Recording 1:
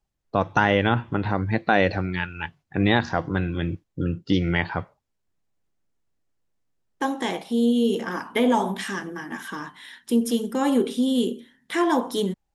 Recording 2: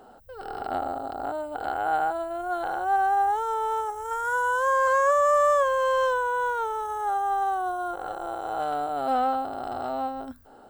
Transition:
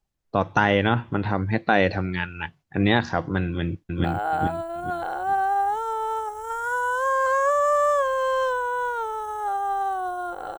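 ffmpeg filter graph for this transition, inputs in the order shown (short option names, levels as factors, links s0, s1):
-filter_complex "[0:a]apad=whole_dur=10.58,atrim=end=10.58,atrim=end=4.042[s0];[1:a]atrim=start=1.648:end=8.19[s1];[s0][s1]acrossfade=d=0.004:c1=hsin:c2=hsin,asplit=2[s2][s3];[s3]afade=t=in:st=3.46:d=0.01,afade=t=out:st=4.04:d=0.01,aecho=0:1:430|860|1290|1720:0.944061|0.283218|0.0849655|0.0254896[s4];[s2][s4]amix=inputs=2:normalize=0"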